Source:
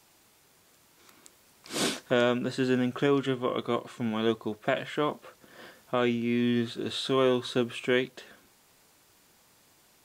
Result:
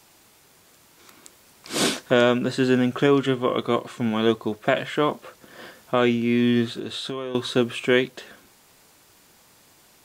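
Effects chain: 6.65–7.35 compressor 8:1, threshold -35 dBFS, peak gain reduction 15 dB; gain +6.5 dB

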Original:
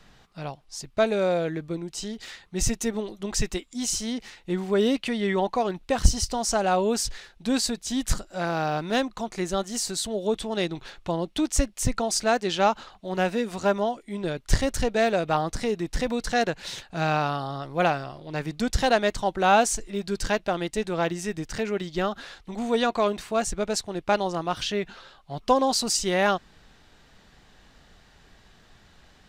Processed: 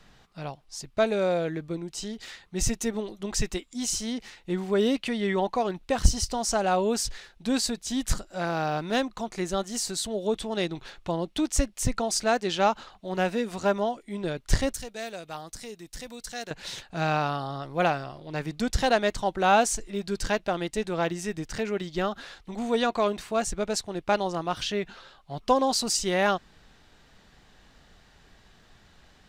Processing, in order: 14.73–16.51 pre-emphasis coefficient 0.8; gain -1.5 dB

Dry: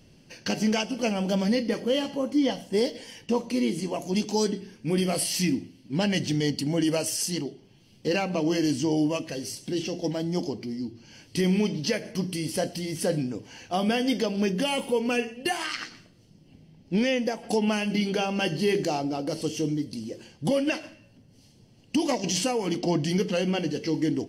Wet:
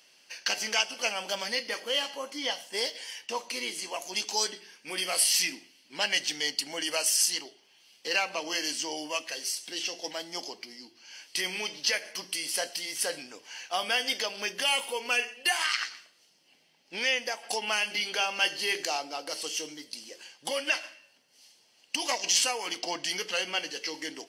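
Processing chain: HPF 1100 Hz 12 dB/oct; gain +4.5 dB

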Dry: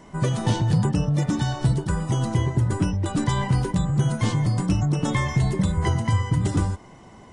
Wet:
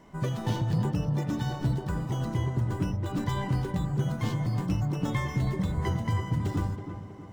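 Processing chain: median filter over 5 samples; on a send: tape echo 0.322 s, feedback 61%, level -6.5 dB, low-pass 1400 Hz; on the sum: gain -7 dB

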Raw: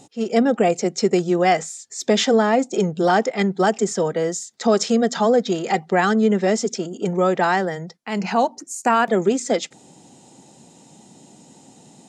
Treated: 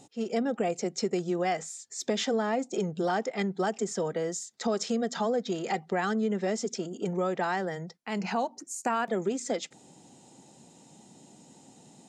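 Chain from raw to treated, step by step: compressor 2:1, threshold -22 dBFS, peak gain reduction 6 dB; gain -6.5 dB

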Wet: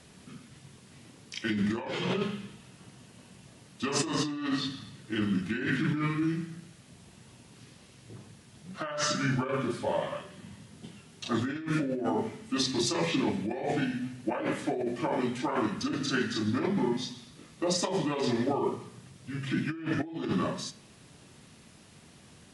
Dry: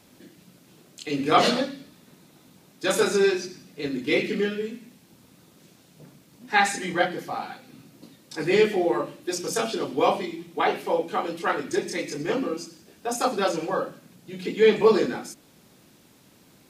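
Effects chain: flange 0.12 Hz, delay 9.1 ms, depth 5.2 ms, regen +83%; negative-ratio compressor -32 dBFS, ratio -1; speed mistake 45 rpm record played at 33 rpm; gain +2 dB

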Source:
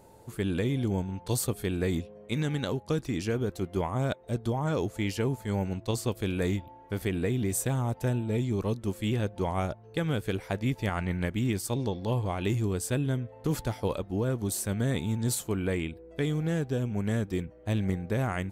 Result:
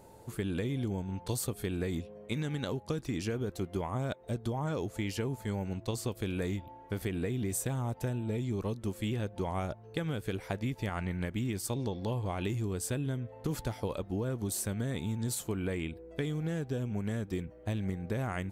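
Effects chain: compressor, threshold -30 dBFS, peak gain reduction 7 dB

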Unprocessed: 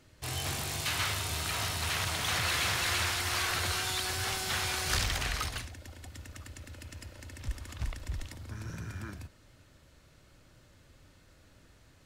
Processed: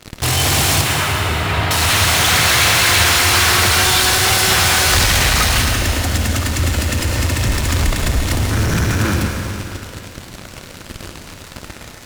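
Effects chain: in parallel at -10.5 dB: fuzz box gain 54 dB, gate -55 dBFS; 0.81–1.71 on the sum: air absorption 370 m; reverb RT60 2.6 s, pre-delay 98 ms, DRR 2.5 dB; gain +6.5 dB

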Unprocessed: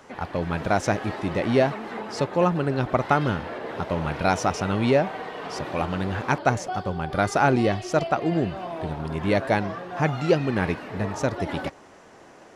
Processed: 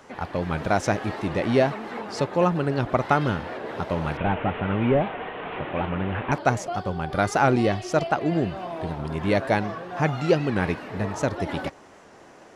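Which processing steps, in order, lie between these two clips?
4.17–6.32 delta modulation 16 kbps, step -30.5 dBFS; record warp 78 rpm, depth 100 cents

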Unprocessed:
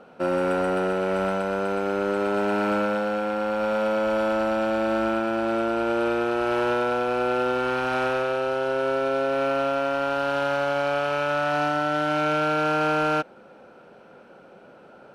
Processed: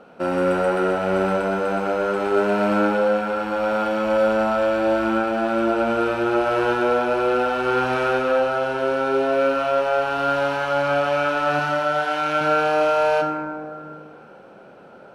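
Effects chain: 11.59–12.41 low shelf 250 Hz -11.5 dB; reverb RT60 2.3 s, pre-delay 18 ms, DRR 3 dB; gain +1.5 dB

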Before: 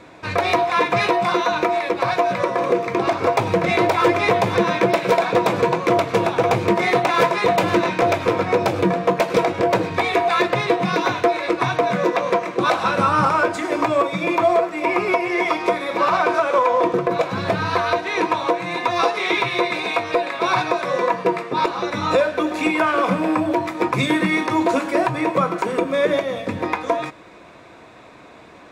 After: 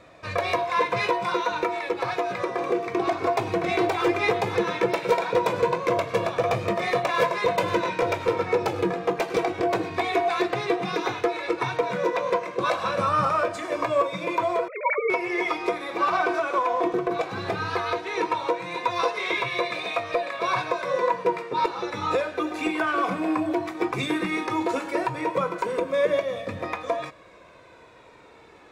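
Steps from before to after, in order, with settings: 14.68–15.1 sine-wave speech; flange 0.15 Hz, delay 1.6 ms, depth 1.2 ms, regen +31%; gain -2.5 dB

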